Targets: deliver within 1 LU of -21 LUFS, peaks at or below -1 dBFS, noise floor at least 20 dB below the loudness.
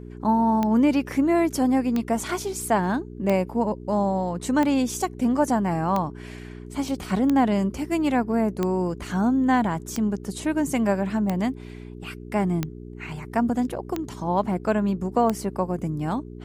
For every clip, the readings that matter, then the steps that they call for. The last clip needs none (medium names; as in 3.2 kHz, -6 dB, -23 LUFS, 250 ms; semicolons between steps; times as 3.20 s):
clicks found 12; hum 60 Hz; highest harmonic 420 Hz; hum level -38 dBFS; loudness -24.0 LUFS; peak level -8.5 dBFS; loudness target -21.0 LUFS
-> de-click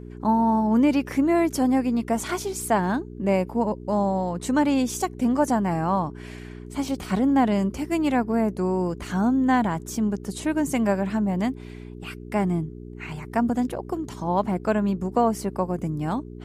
clicks found 0; hum 60 Hz; highest harmonic 420 Hz; hum level -38 dBFS
-> de-hum 60 Hz, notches 7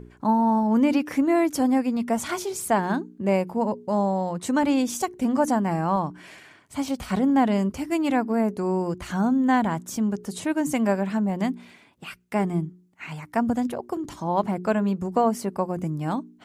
hum not found; loudness -24.5 LUFS; peak level -9.0 dBFS; loudness target -21.0 LUFS
-> trim +3.5 dB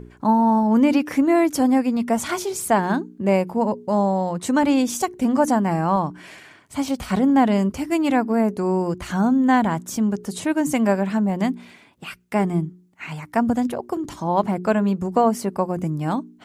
loudness -21.0 LUFS; peak level -5.0 dBFS; noise floor -51 dBFS